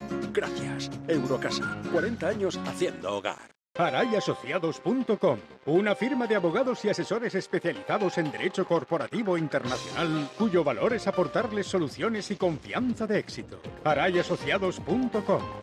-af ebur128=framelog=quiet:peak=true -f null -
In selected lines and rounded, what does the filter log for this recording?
Integrated loudness:
  I:         -28.1 LUFS
  Threshold: -38.2 LUFS
Loudness range:
  LRA:         2.1 LU
  Threshold: -48.2 LUFS
  LRA low:   -29.2 LUFS
  LRA high:  -27.2 LUFS
True peak:
  Peak:      -11.7 dBFS